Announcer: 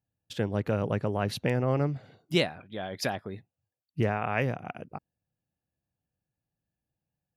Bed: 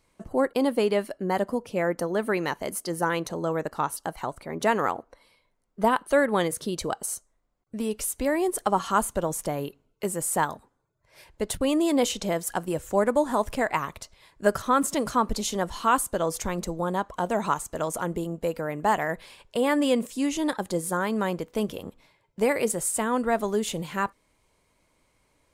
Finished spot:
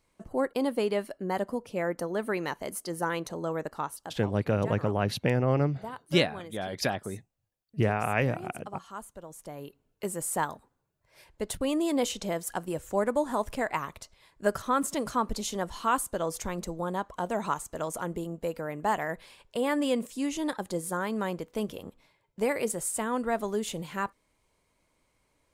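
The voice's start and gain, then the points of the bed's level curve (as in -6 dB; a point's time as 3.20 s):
3.80 s, +1.5 dB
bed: 3.70 s -4.5 dB
4.65 s -18 dB
9.26 s -18 dB
9.90 s -4.5 dB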